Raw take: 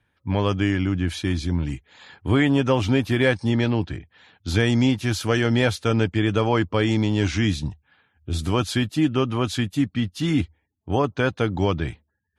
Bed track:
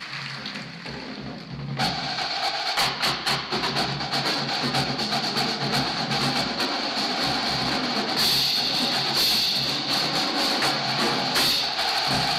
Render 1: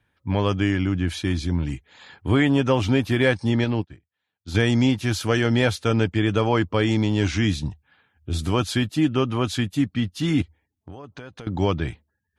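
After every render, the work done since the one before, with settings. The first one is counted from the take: 3.64–4.55 s: upward expansion 2.5:1, over -39 dBFS; 10.42–11.47 s: compression 10:1, threshold -35 dBFS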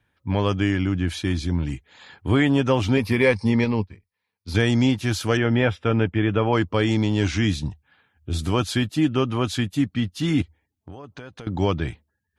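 2.97–4.54 s: rippled EQ curve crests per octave 0.88, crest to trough 10 dB; 5.37–6.53 s: Savitzky-Golay filter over 25 samples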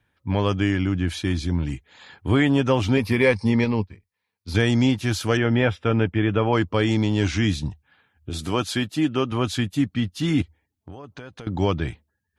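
8.30–9.32 s: high-pass 180 Hz 6 dB/octave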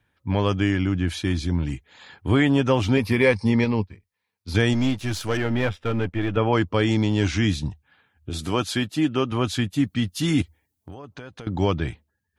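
4.73–6.37 s: partial rectifier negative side -7 dB; 9.84–10.94 s: treble shelf 6.5 kHz +12 dB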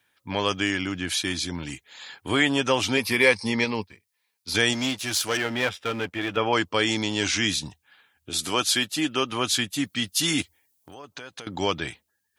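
high-pass 460 Hz 6 dB/octave; treble shelf 2.9 kHz +11.5 dB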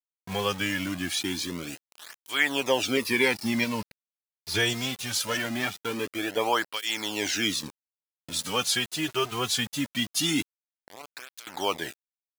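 bit crusher 6-bit; cancelling through-zero flanger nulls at 0.22 Hz, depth 3.9 ms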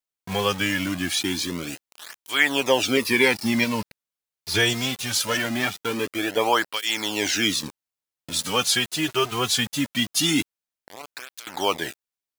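trim +4.5 dB

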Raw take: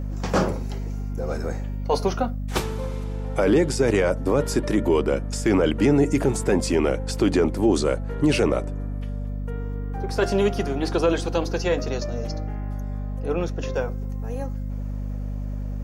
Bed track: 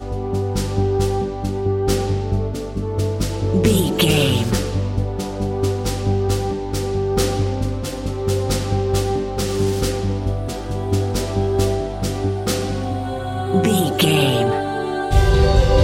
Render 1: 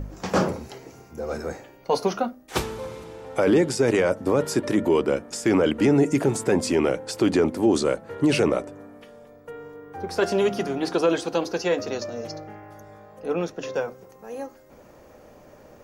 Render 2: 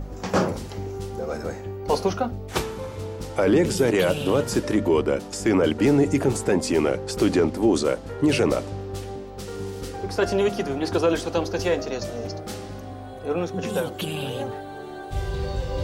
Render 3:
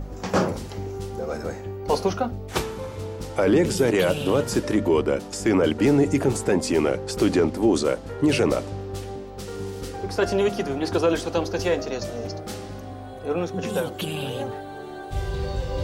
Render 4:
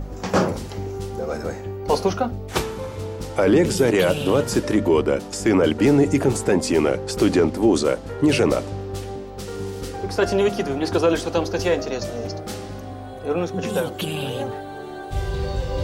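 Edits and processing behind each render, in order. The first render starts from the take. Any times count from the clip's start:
de-hum 50 Hz, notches 5
add bed track -14 dB
no audible change
trim +2.5 dB

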